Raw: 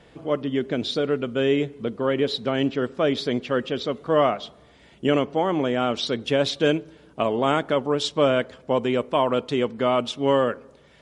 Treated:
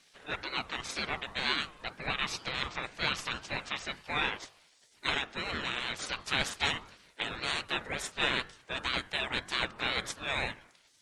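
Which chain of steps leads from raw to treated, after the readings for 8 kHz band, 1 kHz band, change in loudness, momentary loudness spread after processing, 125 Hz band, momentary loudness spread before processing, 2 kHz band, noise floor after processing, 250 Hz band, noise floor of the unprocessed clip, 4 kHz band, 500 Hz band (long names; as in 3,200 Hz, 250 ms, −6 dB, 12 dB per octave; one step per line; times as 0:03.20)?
+0.5 dB, −10.0 dB, −9.5 dB, 7 LU, −13.5 dB, 6 LU, +0.5 dB, −64 dBFS, −19.5 dB, −53 dBFS, −2.5 dB, −21.5 dB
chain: gate on every frequency bin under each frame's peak −20 dB weak
hum removal 49.15 Hz, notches 18
ring modulator whose carrier an LFO sweeps 720 Hz, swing 30%, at 2 Hz
level +7 dB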